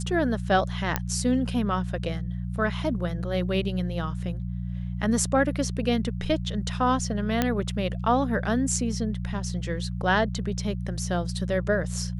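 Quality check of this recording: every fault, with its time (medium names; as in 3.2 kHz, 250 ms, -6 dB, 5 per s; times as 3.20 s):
hum 60 Hz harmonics 3 -31 dBFS
0.96 s: pop -8 dBFS
7.42 s: pop -8 dBFS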